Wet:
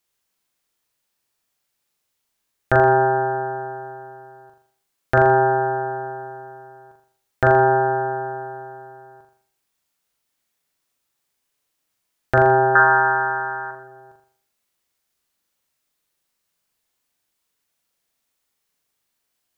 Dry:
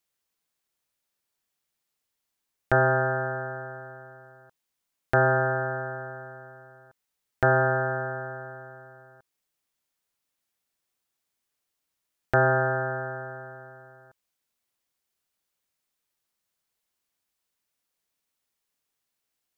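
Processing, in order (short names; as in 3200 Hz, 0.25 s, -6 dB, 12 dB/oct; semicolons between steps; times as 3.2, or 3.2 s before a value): 12.75–13.71 band shelf 1500 Hz +16 dB; flutter echo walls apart 7.1 m, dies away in 0.55 s; gain +4.5 dB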